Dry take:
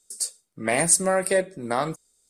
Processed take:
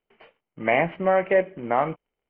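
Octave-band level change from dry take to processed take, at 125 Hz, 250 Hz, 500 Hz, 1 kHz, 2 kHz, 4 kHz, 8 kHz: -1.0 dB, -0.5 dB, +2.5 dB, +3.5 dB, +1.5 dB, -8.0 dB, under -40 dB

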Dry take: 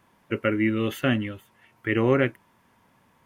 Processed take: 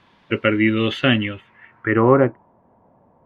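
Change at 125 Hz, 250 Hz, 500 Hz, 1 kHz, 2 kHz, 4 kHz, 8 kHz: +5.5 dB, +5.5 dB, +6.5 dB, +9.5 dB, +6.5 dB, +11.0 dB, n/a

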